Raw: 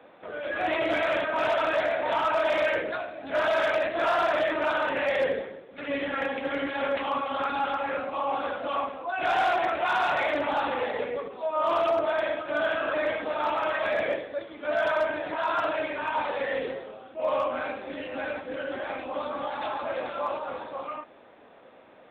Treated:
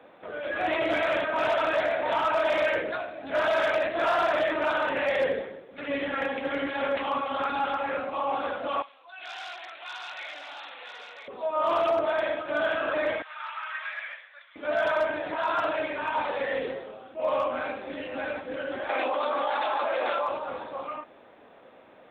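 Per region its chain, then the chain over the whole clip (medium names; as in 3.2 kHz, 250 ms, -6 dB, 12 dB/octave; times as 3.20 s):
8.82–11.28 s: band-pass filter 5.1 kHz, Q 1.3 + delay 995 ms -7 dB
13.22–14.56 s: high-pass 1.3 kHz 24 dB/octave + distance through air 250 m
18.89–20.29 s: high-pass 410 Hz + level flattener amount 100%
whole clip: none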